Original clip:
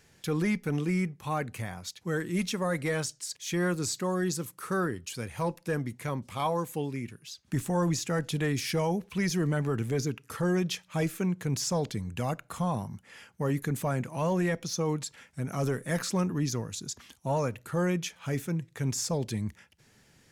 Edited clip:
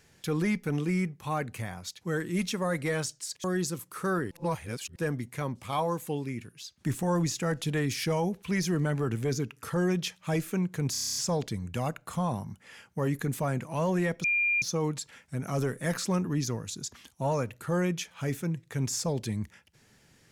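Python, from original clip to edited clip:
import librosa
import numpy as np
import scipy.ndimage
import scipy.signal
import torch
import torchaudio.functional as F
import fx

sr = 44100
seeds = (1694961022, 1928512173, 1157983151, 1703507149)

y = fx.edit(x, sr, fx.cut(start_s=3.44, length_s=0.67),
    fx.reverse_span(start_s=4.98, length_s=0.65),
    fx.stutter(start_s=11.59, slice_s=0.03, count=9),
    fx.insert_tone(at_s=14.67, length_s=0.38, hz=2400.0, db=-23.0), tone=tone)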